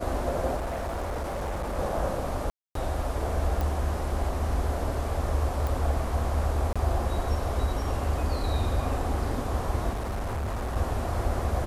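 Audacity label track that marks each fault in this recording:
0.560000	1.790000	clipped -28 dBFS
2.500000	2.750000	dropout 253 ms
3.610000	3.610000	pop
5.670000	5.670000	pop
6.730000	6.760000	dropout 26 ms
9.890000	10.770000	clipped -27.5 dBFS

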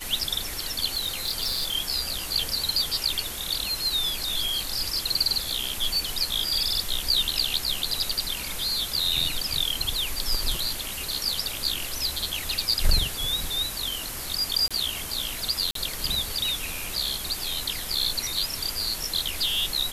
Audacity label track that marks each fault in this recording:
0.940000	1.750000	clipped -22.5 dBFS
14.680000	14.710000	dropout 26 ms
15.710000	15.750000	dropout 43 ms

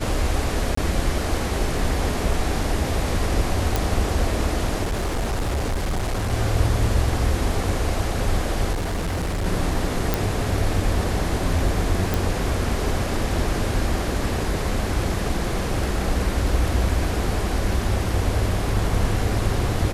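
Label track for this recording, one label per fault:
0.750000	0.770000	dropout 24 ms
3.760000	3.760000	pop
4.830000	6.330000	clipped -20 dBFS
8.720000	9.460000	clipped -21.5 dBFS
10.140000	10.140000	pop
12.140000	12.140000	pop

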